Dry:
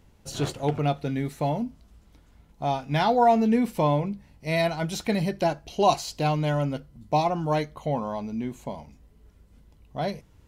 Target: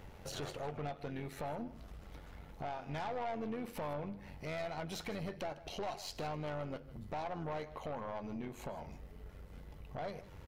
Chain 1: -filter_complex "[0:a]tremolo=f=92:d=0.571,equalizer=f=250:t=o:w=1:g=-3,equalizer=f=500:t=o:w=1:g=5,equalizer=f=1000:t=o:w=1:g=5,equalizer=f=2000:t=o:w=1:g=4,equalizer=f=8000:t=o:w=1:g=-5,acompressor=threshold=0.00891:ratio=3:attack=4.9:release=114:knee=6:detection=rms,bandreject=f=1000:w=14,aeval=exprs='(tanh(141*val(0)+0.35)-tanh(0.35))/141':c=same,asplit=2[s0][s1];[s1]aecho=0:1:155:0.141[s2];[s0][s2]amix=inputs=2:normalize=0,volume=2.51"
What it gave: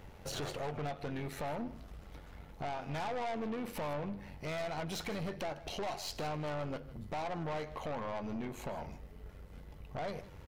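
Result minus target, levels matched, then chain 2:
compression: peak gain reduction -5.5 dB
-filter_complex "[0:a]tremolo=f=92:d=0.571,equalizer=f=250:t=o:w=1:g=-3,equalizer=f=500:t=o:w=1:g=5,equalizer=f=1000:t=o:w=1:g=5,equalizer=f=2000:t=o:w=1:g=4,equalizer=f=8000:t=o:w=1:g=-5,acompressor=threshold=0.00355:ratio=3:attack=4.9:release=114:knee=6:detection=rms,bandreject=f=1000:w=14,aeval=exprs='(tanh(141*val(0)+0.35)-tanh(0.35))/141':c=same,asplit=2[s0][s1];[s1]aecho=0:1:155:0.141[s2];[s0][s2]amix=inputs=2:normalize=0,volume=2.51"

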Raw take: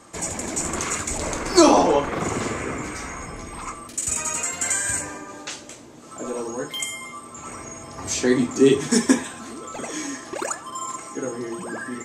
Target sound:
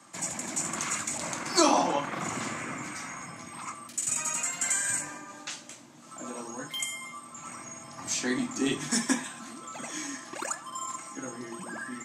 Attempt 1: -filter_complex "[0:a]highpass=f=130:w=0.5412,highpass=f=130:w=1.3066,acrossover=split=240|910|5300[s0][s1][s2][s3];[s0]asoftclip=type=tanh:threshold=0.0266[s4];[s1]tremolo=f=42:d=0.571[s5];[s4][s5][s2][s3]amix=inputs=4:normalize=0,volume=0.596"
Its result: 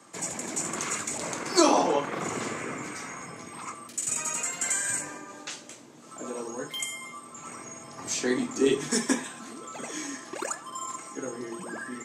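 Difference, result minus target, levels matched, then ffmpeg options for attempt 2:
500 Hz band +4.5 dB
-filter_complex "[0:a]highpass=f=130:w=0.5412,highpass=f=130:w=1.3066,equalizer=f=430:t=o:w=0.37:g=-15,acrossover=split=240|910|5300[s0][s1][s2][s3];[s0]asoftclip=type=tanh:threshold=0.0266[s4];[s1]tremolo=f=42:d=0.571[s5];[s4][s5][s2][s3]amix=inputs=4:normalize=0,volume=0.596"

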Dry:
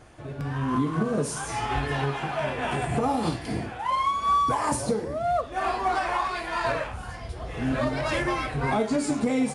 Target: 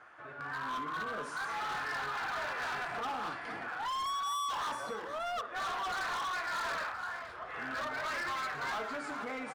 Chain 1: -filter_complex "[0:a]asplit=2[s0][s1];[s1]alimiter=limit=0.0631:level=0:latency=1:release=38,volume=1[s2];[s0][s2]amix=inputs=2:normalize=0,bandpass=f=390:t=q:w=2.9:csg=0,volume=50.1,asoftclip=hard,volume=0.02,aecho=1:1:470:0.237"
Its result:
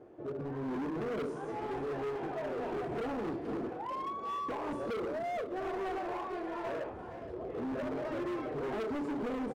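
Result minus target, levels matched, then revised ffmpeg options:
500 Hz band +9.0 dB
-filter_complex "[0:a]asplit=2[s0][s1];[s1]alimiter=limit=0.0631:level=0:latency=1:release=38,volume=1[s2];[s0][s2]amix=inputs=2:normalize=0,bandpass=f=1400:t=q:w=2.9:csg=0,volume=50.1,asoftclip=hard,volume=0.02,aecho=1:1:470:0.237"

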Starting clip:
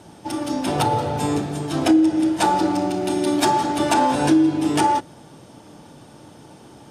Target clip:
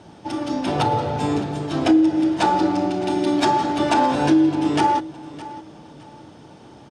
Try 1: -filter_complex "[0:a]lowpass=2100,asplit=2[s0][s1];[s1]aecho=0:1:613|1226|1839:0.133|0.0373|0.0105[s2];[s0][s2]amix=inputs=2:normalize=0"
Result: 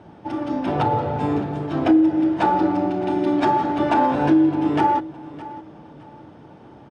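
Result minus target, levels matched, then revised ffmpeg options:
4 kHz band -8.5 dB
-filter_complex "[0:a]lowpass=5400,asplit=2[s0][s1];[s1]aecho=0:1:613|1226|1839:0.133|0.0373|0.0105[s2];[s0][s2]amix=inputs=2:normalize=0"

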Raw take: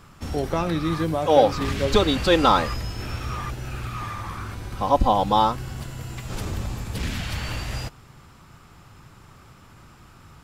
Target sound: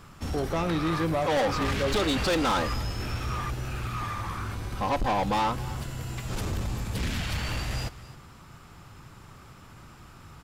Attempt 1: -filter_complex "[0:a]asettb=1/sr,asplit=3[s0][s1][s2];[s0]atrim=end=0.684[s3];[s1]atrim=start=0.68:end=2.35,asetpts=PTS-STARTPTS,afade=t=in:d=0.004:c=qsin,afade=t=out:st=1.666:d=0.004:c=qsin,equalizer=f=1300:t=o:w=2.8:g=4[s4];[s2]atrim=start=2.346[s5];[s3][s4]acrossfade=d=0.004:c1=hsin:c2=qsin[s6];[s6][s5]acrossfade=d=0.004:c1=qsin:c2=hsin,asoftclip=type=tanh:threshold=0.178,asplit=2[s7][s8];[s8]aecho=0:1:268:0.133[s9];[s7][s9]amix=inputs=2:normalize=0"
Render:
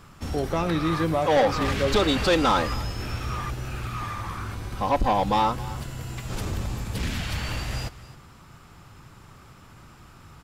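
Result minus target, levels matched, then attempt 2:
saturation: distortion -5 dB
-filter_complex "[0:a]asettb=1/sr,asplit=3[s0][s1][s2];[s0]atrim=end=0.684[s3];[s1]atrim=start=0.68:end=2.35,asetpts=PTS-STARTPTS,afade=t=in:d=0.004:c=qsin,afade=t=out:st=1.666:d=0.004:c=qsin,equalizer=f=1300:t=o:w=2.8:g=4[s4];[s2]atrim=start=2.346[s5];[s3][s4]acrossfade=d=0.004:c1=hsin:c2=qsin[s6];[s6][s5]acrossfade=d=0.004:c1=qsin:c2=hsin,asoftclip=type=tanh:threshold=0.0794,asplit=2[s7][s8];[s8]aecho=0:1:268:0.133[s9];[s7][s9]amix=inputs=2:normalize=0"

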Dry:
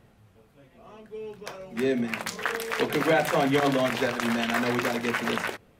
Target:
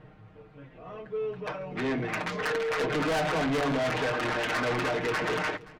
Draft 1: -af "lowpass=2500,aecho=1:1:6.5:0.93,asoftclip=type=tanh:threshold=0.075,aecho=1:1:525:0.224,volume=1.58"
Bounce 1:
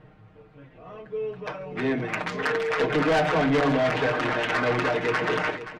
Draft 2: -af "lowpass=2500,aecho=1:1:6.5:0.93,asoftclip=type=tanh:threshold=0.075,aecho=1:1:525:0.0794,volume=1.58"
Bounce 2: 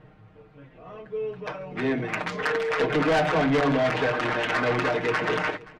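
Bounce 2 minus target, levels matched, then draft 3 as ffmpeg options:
saturation: distortion -4 dB
-af "lowpass=2500,aecho=1:1:6.5:0.93,asoftclip=type=tanh:threshold=0.0335,aecho=1:1:525:0.0794,volume=1.58"

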